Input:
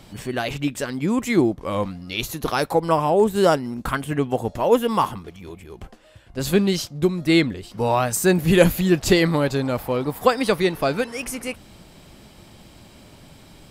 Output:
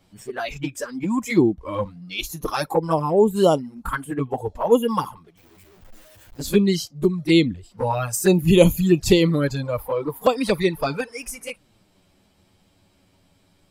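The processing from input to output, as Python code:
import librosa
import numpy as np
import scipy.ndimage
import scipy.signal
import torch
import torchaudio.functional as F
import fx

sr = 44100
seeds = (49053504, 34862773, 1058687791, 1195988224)

y = fx.clip_1bit(x, sr, at=(5.37, 6.39))
y = fx.noise_reduce_blind(y, sr, reduce_db=13)
y = fx.env_flanger(y, sr, rest_ms=11.0, full_db=-13.5)
y = y * librosa.db_to_amplitude(2.0)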